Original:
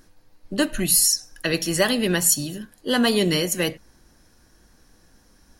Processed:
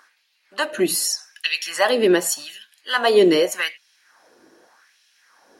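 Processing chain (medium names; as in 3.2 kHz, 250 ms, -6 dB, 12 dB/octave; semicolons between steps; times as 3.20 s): treble shelf 5.2 kHz -12 dB; in parallel at 0 dB: compression, threshold -28 dBFS, peak gain reduction 12.5 dB; on the sum: LFO high-pass sine 0.84 Hz 340–3000 Hz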